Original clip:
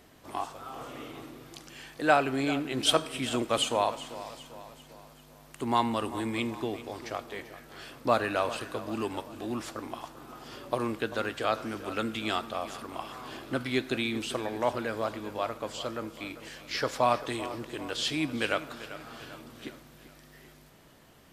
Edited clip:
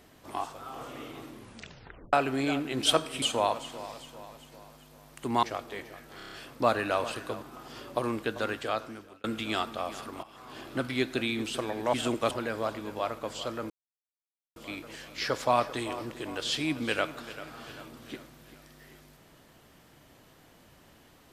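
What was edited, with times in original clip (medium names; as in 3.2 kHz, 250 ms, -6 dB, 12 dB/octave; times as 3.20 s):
1.30 s: tape stop 0.83 s
3.22–3.59 s: move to 14.70 s
5.80–7.03 s: delete
7.77 s: stutter 0.03 s, 6 plays
8.87–10.18 s: delete
11.30–12.00 s: fade out
12.99–13.47 s: fade in, from -16 dB
16.09 s: insert silence 0.86 s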